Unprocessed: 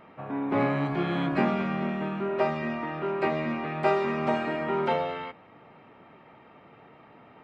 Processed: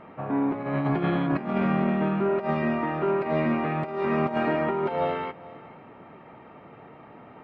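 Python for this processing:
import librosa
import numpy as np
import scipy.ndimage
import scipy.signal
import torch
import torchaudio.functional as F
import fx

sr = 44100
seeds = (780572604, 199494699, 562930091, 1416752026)

y = fx.lowpass(x, sr, hz=1700.0, slope=6)
y = fx.over_compress(y, sr, threshold_db=-29.0, ratio=-0.5)
y = y + 10.0 ** (-19.5 / 20.0) * np.pad(y, (int(438 * sr / 1000.0), 0))[:len(y)]
y = F.gain(torch.from_numpy(y), 4.5).numpy()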